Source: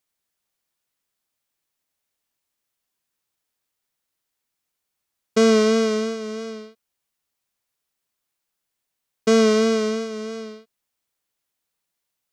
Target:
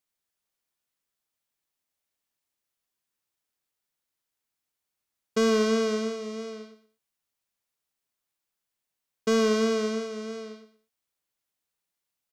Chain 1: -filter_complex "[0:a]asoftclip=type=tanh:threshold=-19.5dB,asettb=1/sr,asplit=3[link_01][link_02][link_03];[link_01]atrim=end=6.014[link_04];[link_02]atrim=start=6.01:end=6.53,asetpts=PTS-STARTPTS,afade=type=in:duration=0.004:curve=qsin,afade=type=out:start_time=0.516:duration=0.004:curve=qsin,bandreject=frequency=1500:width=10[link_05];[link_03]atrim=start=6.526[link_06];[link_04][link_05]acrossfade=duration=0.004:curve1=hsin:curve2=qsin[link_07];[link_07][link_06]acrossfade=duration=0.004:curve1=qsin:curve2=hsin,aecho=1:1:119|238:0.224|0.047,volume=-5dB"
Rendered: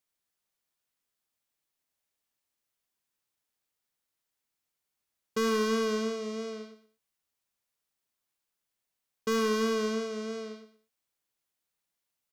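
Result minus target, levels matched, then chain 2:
soft clipping: distortion +10 dB
-filter_complex "[0:a]asoftclip=type=tanh:threshold=-10.5dB,asettb=1/sr,asplit=3[link_01][link_02][link_03];[link_01]atrim=end=6.014[link_04];[link_02]atrim=start=6.01:end=6.53,asetpts=PTS-STARTPTS,afade=type=in:duration=0.004:curve=qsin,afade=type=out:start_time=0.516:duration=0.004:curve=qsin,bandreject=frequency=1500:width=10[link_05];[link_03]atrim=start=6.526[link_06];[link_04][link_05]acrossfade=duration=0.004:curve1=hsin:curve2=qsin[link_07];[link_07][link_06]acrossfade=duration=0.004:curve1=qsin:curve2=hsin,aecho=1:1:119|238:0.224|0.047,volume=-5dB"

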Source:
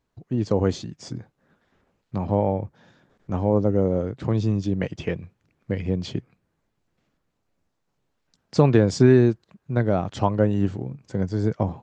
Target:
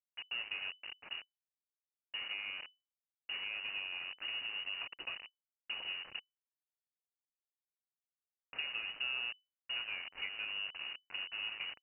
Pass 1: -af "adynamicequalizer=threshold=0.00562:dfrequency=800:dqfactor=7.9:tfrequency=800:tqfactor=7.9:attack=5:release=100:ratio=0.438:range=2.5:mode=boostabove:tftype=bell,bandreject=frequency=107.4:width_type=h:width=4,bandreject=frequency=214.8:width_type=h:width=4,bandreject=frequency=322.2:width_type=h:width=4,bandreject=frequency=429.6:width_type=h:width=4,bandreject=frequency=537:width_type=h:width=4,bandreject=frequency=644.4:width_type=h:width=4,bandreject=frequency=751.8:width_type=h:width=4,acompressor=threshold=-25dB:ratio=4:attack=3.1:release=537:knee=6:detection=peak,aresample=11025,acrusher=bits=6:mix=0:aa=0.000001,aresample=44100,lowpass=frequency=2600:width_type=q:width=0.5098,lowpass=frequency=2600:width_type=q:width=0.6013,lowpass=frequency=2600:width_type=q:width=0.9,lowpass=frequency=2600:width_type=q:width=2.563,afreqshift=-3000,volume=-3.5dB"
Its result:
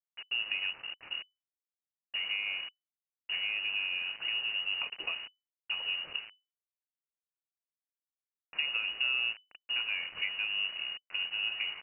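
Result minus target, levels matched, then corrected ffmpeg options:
downward compressor: peak gain reduction −7.5 dB
-af "adynamicequalizer=threshold=0.00562:dfrequency=800:dqfactor=7.9:tfrequency=800:tqfactor=7.9:attack=5:release=100:ratio=0.438:range=2.5:mode=boostabove:tftype=bell,bandreject=frequency=107.4:width_type=h:width=4,bandreject=frequency=214.8:width_type=h:width=4,bandreject=frequency=322.2:width_type=h:width=4,bandreject=frequency=429.6:width_type=h:width=4,bandreject=frequency=537:width_type=h:width=4,bandreject=frequency=644.4:width_type=h:width=4,bandreject=frequency=751.8:width_type=h:width=4,acompressor=threshold=-35dB:ratio=4:attack=3.1:release=537:knee=6:detection=peak,aresample=11025,acrusher=bits=6:mix=0:aa=0.000001,aresample=44100,lowpass=frequency=2600:width_type=q:width=0.5098,lowpass=frequency=2600:width_type=q:width=0.6013,lowpass=frequency=2600:width_type=q:width=0.9,lowpass=frequency=2600:width_type=q:width=2.563,afreqshift=-3000,volume=-3.5dB"

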